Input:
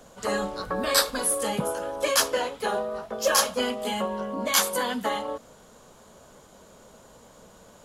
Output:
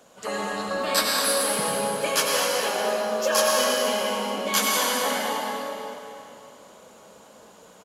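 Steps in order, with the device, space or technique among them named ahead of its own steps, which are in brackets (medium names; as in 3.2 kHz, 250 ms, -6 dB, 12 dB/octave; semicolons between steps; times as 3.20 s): stadium PA (high-pass 200 Hz 6 dB/octave; peaking EQ 2.6 kHz +3.5 dB 0.43 oct; loudspeakers at several distances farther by 70 m -10 dB, 87 m -11 dB; reverberation RT60 3.1 s, pre-delay 83 ms, DRR -2.5 dB); bass shelf 170 Hz -3 dB; trim -2.5 dB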